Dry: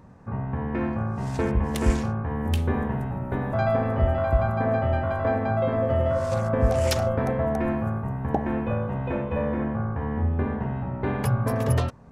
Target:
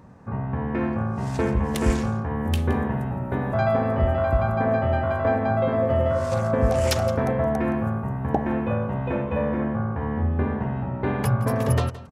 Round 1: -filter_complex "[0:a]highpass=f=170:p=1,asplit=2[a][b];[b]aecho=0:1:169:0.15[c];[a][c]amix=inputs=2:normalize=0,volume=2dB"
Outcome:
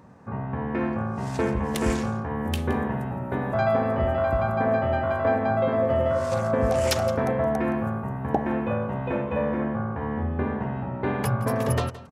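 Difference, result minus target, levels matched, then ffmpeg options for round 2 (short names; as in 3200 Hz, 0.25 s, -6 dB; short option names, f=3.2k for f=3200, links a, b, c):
125 Hz band -3.0 dB
-filter_complex "[0:a]highpass=f=56:p=1,asplit=2[a][b];[b]aecho=0:1:169:0.15[c];[a][c]amix=inputs=2:normalize=0,volume=2dB"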